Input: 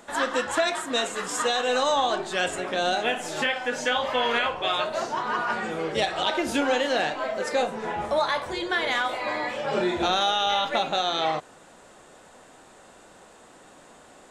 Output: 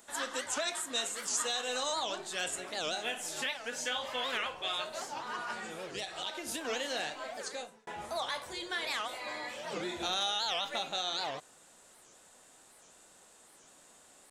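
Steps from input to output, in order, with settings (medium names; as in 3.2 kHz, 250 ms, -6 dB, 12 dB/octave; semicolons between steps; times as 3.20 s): 5.85–6.66 s: compression, threshold -25 dBFS, peak gain reduction 6 dB; pre-emphasis filter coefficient 0.8; 7.36–7.87 s: fade out; warped record 78 rpm, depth 250 cents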